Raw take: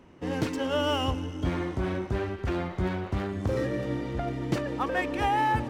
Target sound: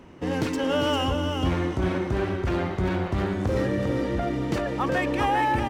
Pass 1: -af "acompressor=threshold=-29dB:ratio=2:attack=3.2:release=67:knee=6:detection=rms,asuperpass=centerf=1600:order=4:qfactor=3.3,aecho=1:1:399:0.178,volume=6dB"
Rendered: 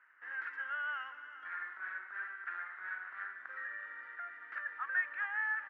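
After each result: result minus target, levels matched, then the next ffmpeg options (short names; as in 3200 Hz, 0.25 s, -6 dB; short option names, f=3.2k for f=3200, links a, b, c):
2000 Hz band +11.5 dB; echo-to-direct -9 dB
-af "acompressor=threshold=-29dB:ratio=2:attack=3.2:release=67:knee=6:detection=rms,aecho=1:1:399:0.178,volume=6dB"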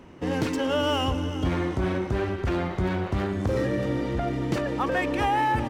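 echo-to-direct -9 dB
-af "acompressor=threshold=-29dB:ratio=2:attack=3.2:release=67:knee=6:detection=rms,aecho=1:1:399:0.501,volume=6dB"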